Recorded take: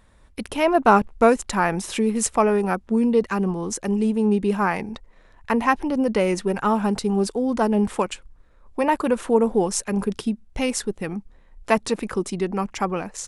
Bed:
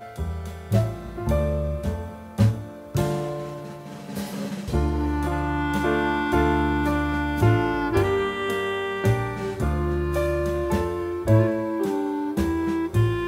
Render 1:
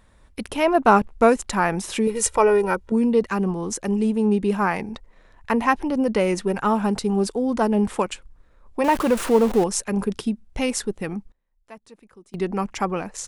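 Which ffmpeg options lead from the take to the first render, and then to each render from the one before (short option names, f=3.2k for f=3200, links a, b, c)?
-filter_complex "[0:a]asettb=1/sr,asplit=3[a][b][c];[a]atrim=end=2.074[d];[b]atrim=start=2.07:end=2.92,asetpts=PTS-STARTPTS,afade=t=in:d=0.004:c=qsin,afade=t=out:st=0.846:d=0.004:c=qsin,aecho=1:1:2.1:0.7,atrim=end_sample=37485[e];[c]atrim=start=2.916[f];[d][e]acrossfade=d=0.004:c1=hsin:c2=qsin[g];[g][f]acrossfade=d=0.004:c1=qsin:c2=hsin,asettb=1/sr,asplit=3[h][i][j];[h]atrim=end=8.844[k];[i]atrim=start=8.84:end=9.64,asetpts=PTS-STARTPTS,afade=t=in:d=0.004:c=qsin,afade=t=out:st=0.796:d=0.004:c=qsin,aeval=exprs='val(0)+0.5*0.0501*sgn(val(0))':c=same[l];[j]atrim=start=9.636[m];[k][l]acrossfade=d=0.004:c1=hsin:c2=qsin[n];[n][m]acrossfade=d=0.004:c1=qsin:c2=hsin,asplit=3[o][p][q];[o]atrim=end=11.32,asetpts=PTS-STARTPTS,afade=t=out:st=11.16:d=0.16:c=log:silence=0.0668344[r];[p]atrim=start=11.32:end=12.34,asetpts=PTS-STARTPTS,volume=-23.5dB[s];[q]atrim=start=12.34,asetpts=PTS-STARTPTS,afade=t=in:d=0.16:c=log:silence=0.0668344[t];[r][s][t]concat=n=3:v=0:a=1"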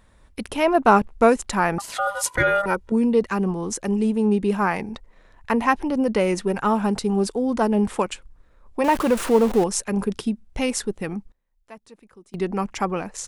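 -filter_complex "[0:a]asettb=1/sr,asplit=3[a][b][c];[a]atrim=end=1.784[d];[b]atrim=start=1.78:end=2.66,asetpts=PTS-STARTPTS,afade=t=in:d=0.004:c=qsin,afade=t=out:st=0.876:d=0.004:c=qsin,aeval=exprs='val(0)*sin(2*PI*1000*n/s)':c=same[e];[c]atrim=start=2.656[f];[d][e]acrossfade=d=0.004:c1=hsin:c2=qsin[g];[g][f]acrossfade=d=0.004:c1=qsin:c2=hsin"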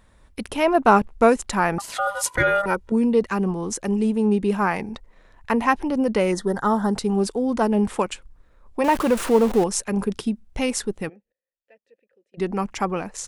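-filter_complex "[0:a]asplit=3[a][b][c];[a]afade=t=out:st=6.31:d=0.02[d];[b]asuperstop=centerf=2500:order=8:qfactor=2.2,afade=t=in:st=6.31:d=0.02,afade=t=out:st=6.92:d=0.02[e];[c]afade=t=in:st=6.92:d=0.02[f];[d][e][f]amix=inputs=3:normalize=0,asplit=3[g][h][i];[g]afade=t=out:st=11.08:d=0.02[j];[h]asplit=3[k][l][m];[k]bandpass=f=530:t=q:w=8,volume=0dB[n];[l]bandpass=f=1.84k:t=q:w=8,volume=-6dB[o];[m]bandpass=f=2.48k:t=q:w=8,volume=-9dB[p];[n][o][p]amix=inputs=3:normalize=0,afade=t=in:st=11.08:d=0.02,afade=t=out:st=12.37:d=0.02[q];[i]afade=t=in:st=12.37:d=0.02[r];[j][q][r]amix=inputs=3:normalize=0"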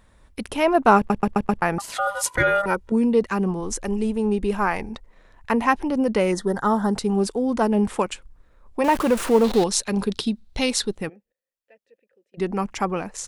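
-filter_complex "[0:a]asplit=3[a][b][c];[a]afade=t=out:st=3.59:d=0.02[d];[b]asubboost=boost=8.5:cutoff=54,afade=t=in:st=3.59:d=0.02,afade=t=out:st=4.89:d=0.02[e];[c]afade=t=in:st=4.89:d=0.02[f];[d][e][f]amix=inputs=3:normalize=0,asettb=1/sr,asplit=3[g][h][i];[g]atrim=end=9.444[j];[h]atrim=start=9.44:end=10.95,asetpts=PTS-STARTPTS,afade=t=in:d=0.004:c=qsin,afade=t=out:st=1.506:d=0.004:c=qsin,equalizer=f=4k:w=2.1:g=14[k];[i]atrim=start=10.946[l];[j][k]acrossfade=d=0.004:c1=hsin:c2=qsin[m];[m][l]acrossfade=d=0.004:c1=qsin:c2=hsin,asplit=6[n][o][p][q][r][s];[n]atrim=end=1.102[t];[o]atrim=start=0.968:end=1.102[u];[p]atrim=start=0.968:end=1.102[v];[q]atrim=start=0.968:end=1.102[w];[r]atrim=start=0.968:end=1.102[x];[s]atrim=start=1.618[y];[t][u]acrossfade=d=0.004:c1=hsin:c2=hsin[z];[z][v]acrossfade=d=0.004:c1=hsin:c2=hsin[aa];[aa][w]acrossfade=d=0.004:c1=hsin:c2=hsin[ab];[ab][x]acrossfade=d=0.004:c1=hsin:c2=hsin[ac];[ac][y]acrossfade=d=0.004:c1=hsin:c2=hsin"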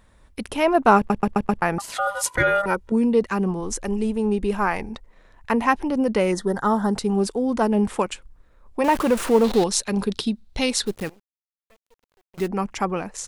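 -filter_complex "[0:a]asplit=3[a][b][c];[a]afade=t=out:st=10.86:d=0.02[d];[b]acrusher=bits=7:dc=4:mix=0:aa=0.000001,afade=t=in:st=10.86:d=0.02,afade=t=out:st=12.46:d=0.02[e];[c]afade=t=in:st=12.46:d=0.02[f];[d][e][f]amix=inputs=3:normalize=0"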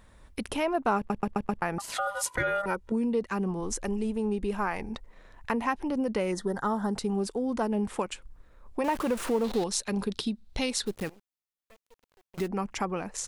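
-af "acompressor=threshold=-32dB:ratio=2"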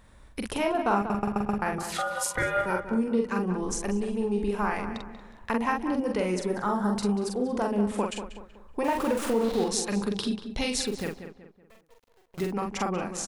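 -filter_complex "[0:a]asplit=2[a][b];[b]adelay=44,volume=-3.5dB[c];[a][c]amix=inputs=2:normalize=0,asplit=2[d][e];[e]adelay=188,lowpass=f=2.6k:p=1,volume=-9.5dB,asplit=2[f][g];[g]adelay=188,lowpass=f=2.6k:p=1,volume=0.39,asplit=2[h][i];[i]adelay=188,lowpass=f=2.6k:p=1,volume=0.39,asplit=2[j][k];[k]adelay=188,lowpass=f=2.6k:p=1,volume=0.39[l];[d][f][h][j][l]amix=inputs=5:normalize=0"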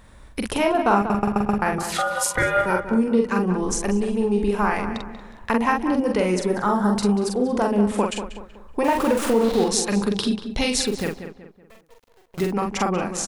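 -af "volume=6.5dB"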